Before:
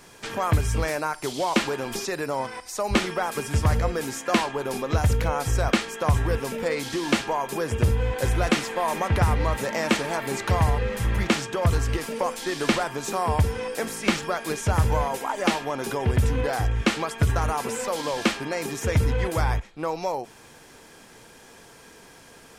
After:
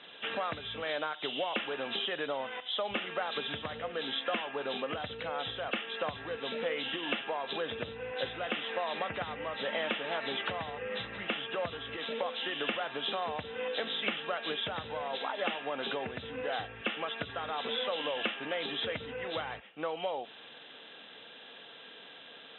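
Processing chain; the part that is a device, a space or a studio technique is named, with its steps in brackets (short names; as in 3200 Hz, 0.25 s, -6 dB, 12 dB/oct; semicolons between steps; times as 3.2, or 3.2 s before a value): hearing aid with frequency lowering (nonlinear frequency compression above 2600 Hz 4:1; compressor 4:1, threshold -27 dBFS, peak gain reduction 11 dB; speaker cabinet 310–5400 Hz, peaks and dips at 360 Hz -8 dB, 960 Hz -7 dB, 4600 Hz -9 dB); gain -1 dB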